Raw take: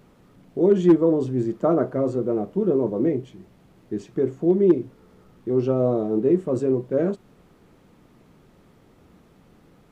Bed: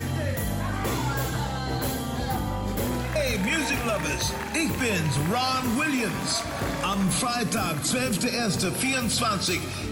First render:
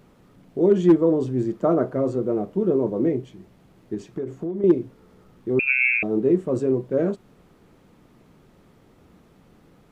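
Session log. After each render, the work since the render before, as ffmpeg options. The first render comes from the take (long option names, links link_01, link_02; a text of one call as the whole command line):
ffmpeg -i in.wav -filter_complex "[0:a]asettb=1/sr,asplit=3[link_01][link_02][link_03];[link_01]atrim=end=3.944[link_04];[link_02]atrim=start=3.94:end=4.64,asetpts=PTS-STARTPTS,afade=type=in:duration=0.004:curve=qsin,afade=type=out:start_time=0.696:duration=0.004:curve=qsin,acompressor=threshold=-24dB:ratio=12:attack=3.2:release=140:knee=1:detection=peak[link_05];[link_03]atrim=start=4.636[link_06];[link_04][link_05]acrossfade=duration=0.004:curve1=hsin:curve2=qsin[link_07];[link_07][link_06]acrossfade=duration=0.004:curve1=qsin:curve2=hsin,asettb=1/sr,asplit=3[link_08][link_09][link_10];[link_08]atrim=end=5.594[link_11];[link_09]atrim=start=5.59:end=6.03,asetpts=PTS-STARTPTS,afade=type=in:duration=0.004:curve=qsin,afade=type=out:start_time=0.436:duration=0.004:curve=qsin,lowpass=frequency=2400:width_type=q:width=0.5098,lowpass=frequency=2400:width_type=q:width=0.6013,lowpass=frequency=2400:width_type=q:width=0.9,lowpass=frequency=2400:width_type=q:width=2.563,afreqshift=-2800[link_12];[link_10]atrim=start=6.026[link_13];[link_11][link_12]acrossfade=duration=0.004:curve1=hsin:curve2=qsin[link_14];[link_14][link_13]acrossfade=duration=0.004:curve1=qsin:curve2=hsin" out.wav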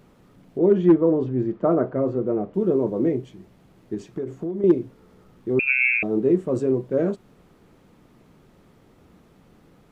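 ffmpeg -i in.wav -filter_complex "[0:a]asettb=1/sr,asplit=3[link_01][link_02][link_03];[link_01]atrim=end=0.584[link_04];[link_02]atrim=start=0.58:end=2.54,asetpts=PTS-STARTPTS,afade=type=in:duration=0.004:curve=qsin,afade=type=out:start_time=1.956:duration=0.004:curve=qsin,lowpass=2600[link_05];[link_03]atrim=start=2.536[link_06];[link_04][link_05]acrossfade=duration=0.004:curve1=hsin:curve2=qsin[link_07];[link_07][link_06]acrossfade=duration=0.004:curve1=qsin:curve2=hsin" out.wav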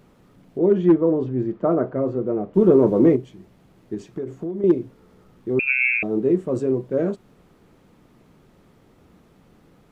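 ffmpeg -i in.wav -filter_complex "[0:a]asplit=3[link_01][link_02][link_03];[link_01]afade=type=out:start_time=2.55:duration=0.02[link_04];[link_02]acontrast=90,afade=type=in:start_time=2.55:duration=0.02,afade=type=out:start_time=3.15:duration=0.02[link_05];[link_03]afade=type=in:start_time=3.15:duration=0.02[link_06];[link_04][link_05][link_06]amix=inputs=3:normalize=0" out.wav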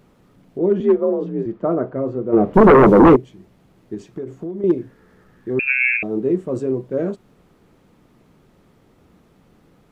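ffmpeg -i in.wav -filter_complex "[0:a]asettb=1/sr,asplit=3[link_01][link_02][link_03];[link_01]atrim=end=0.804[link_04];[link_02]atrim=start=0.8:end=1.46,asetpts=PTS-STARTPTS,afade=type=in:duration=0.004:curve=qsin,afade=type=out:start_time=0.656:duration=0.004:curve=qsin,afreqshift=47[link_05];[link_03]atrim=start=1.456[link_06];[link_04][link_05]acrossfade=duration=0.004:curve1=hsin:curve2=qsin[link_07];[link_07][link_06]acrossfade=duration=0.004:curve1=qsin:curve2=hsin,asplit=3[link_08][link_09][link_10];[link_08]afade=type=out:start_time=2.32:duration=0.02[link_11];[link_09]aeval=exprs='0.562*sin(PI/2*2.51*val(0)/0.562)':channel_layout=same,afade=type=in:start_time=2.32:duration=0.02,afade=type=out:start_time=3.15:duration=0.02[link_12];[link_10]afade=type=in:start_time=3.15:duration=0.02[link_13];[link_11][link_12][link_13]amix=inputs=3:normalize=0,asettb=1/sr,asplit=3[link_14][link_15][link_16];[link_14]atrim=end=4.784[link_17];[link_15]atrim=start=4.78:end=5.97,asetpts=PTS-STARTPTS,afade=type=in:duration=0.004:curve=qsin,afade=type=out:start_time=1.186:duration=0.004:curve=qsin,equalizer=frequency=1700:width=4.5:gain=14.5[link_18];[link_16]atrim=start=5.966[link_19];[link_17][link_18]acrossfade=duration=0.004:curve1=hsin:curve2=qsin[link_20];[link_20][link_19]acrossfade=duration=0.004:curve1=qsin:curve2=hsin" out.wav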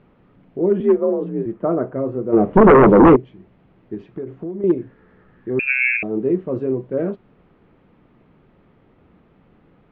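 ffmpeg -i in.wav -af "lowpass=frequency=3000:width=0.5412,lowpass=frequency=3000:width=1.3066" out.wav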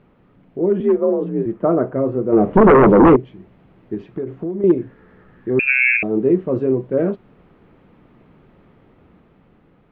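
ffmpeg -i in.wav -af "alimiter=limit=-9dB:level=0:latency=1:release=41,dynaudnorm=framelen=260:gausssize=9:maxgain=4dB" out.wav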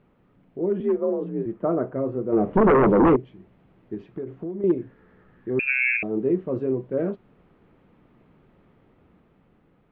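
ffmpeg -i in.wav -af "volume=-7dB" out.wav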